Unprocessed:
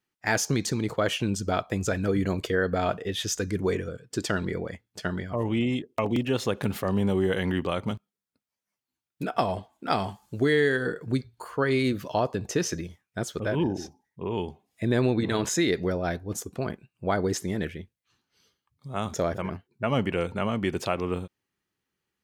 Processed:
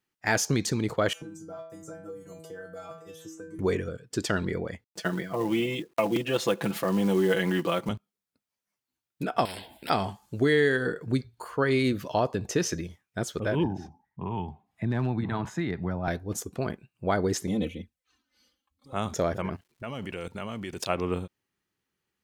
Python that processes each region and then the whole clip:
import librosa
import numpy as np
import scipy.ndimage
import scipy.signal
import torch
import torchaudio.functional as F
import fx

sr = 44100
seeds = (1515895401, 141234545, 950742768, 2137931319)

y = fx.chain(x, sr, fx.band_shelf(hz=2900.0, db=-14.5, octaves=1.7),
    fx.stiff_resonator(f0_hz=160.0, decay_s=0.57, stiffness=0.002),
    fx.band_squash(depth_pct=100), at=(1.13, 3.59))
y = fx.chain(y, sr, fx.highpass(hz=180.0, slope=12),
    fx.comb(ms=6.0, depth=0.7),
    fx.quant_companded(bits=6), at=(4.84, 7.89))
y = fx.chain(y, sr, fx.fixed_phaser(hz=2800.0, stages=4),
    fx.spectral_comp(ratio=4.0), at=(9.45, 9.9))
y = fx.chain(y, sr, fx.curve_eq(hz=(180.0, 500.0, 810.0, 3900.0, 5700.0), db=(0, -13, 2, -14, -19)),
    fx.clip_hard(threshold_db=-20.0),
    fx.band_squash(depth_pct=40), at=(13.65, 16.08))
y = fx.chain(y, sr, fx.comb(ms=3.9, depth=0.88),
    fx.env_flanger(rest_ms=3.7, full_db=-29.0), at=(17.47, 18.93))
y = fx.level_steps(y, sr, step_db=18, at=(19.55, 20.88), fade=0.02)
y = fx.high_shelf(y, sr, hz=3000.0, db=8.5, at=(19.55, 20.88), fade=0.02)
y = fx.dmg_crackle(y, sr, seeds[0], per_s=370.0, level_db=-57.0, at=(19.55, 20.88), fade=0.02)